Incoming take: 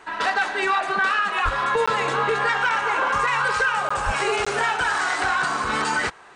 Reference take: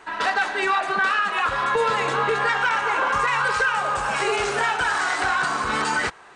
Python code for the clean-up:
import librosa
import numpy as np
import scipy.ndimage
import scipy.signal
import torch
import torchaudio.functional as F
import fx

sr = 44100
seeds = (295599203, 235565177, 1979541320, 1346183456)

y = fx.fix_deplosive(x, sr, at_s=(1.44, 4.05))
y = fx.fix_interpolate(y, sr, at_s=(1.86, 3.89, 4.45), length_ms=15.0)